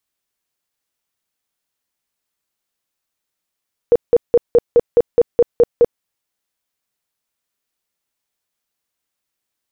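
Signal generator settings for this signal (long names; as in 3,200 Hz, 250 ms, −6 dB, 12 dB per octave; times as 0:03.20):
tone bursts 476 Hz, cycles 17, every 0.21 s, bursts 10, −6 dBFS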